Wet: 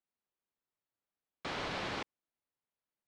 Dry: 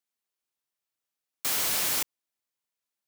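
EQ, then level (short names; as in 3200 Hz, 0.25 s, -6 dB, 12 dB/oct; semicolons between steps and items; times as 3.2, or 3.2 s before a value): tape spacing loss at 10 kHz 43 dB; bell 4000 Hz +4 dB; +2.5 dB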